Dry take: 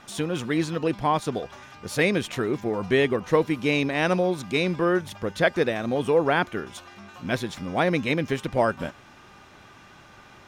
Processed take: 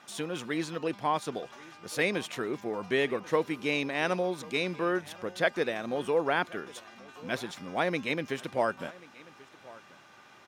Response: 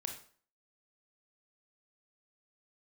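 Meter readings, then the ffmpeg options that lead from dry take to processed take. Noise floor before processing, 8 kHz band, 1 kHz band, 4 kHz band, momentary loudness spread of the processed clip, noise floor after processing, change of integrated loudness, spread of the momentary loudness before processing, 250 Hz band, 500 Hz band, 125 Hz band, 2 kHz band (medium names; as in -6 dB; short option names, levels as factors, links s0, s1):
-50 dBFS, -4.5 dB, -5.0 dB, -4.5 dB, 16 LU, -56 dBFS, -6.5 dB, 12 LU, -8.5 dB, -6.5 dB, -11.5 dB, -4.5 dB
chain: -af "highpass=130,lowshelf=f=310:g=-6.5,aecho=1:1:1086:0.0841,volume=0.596"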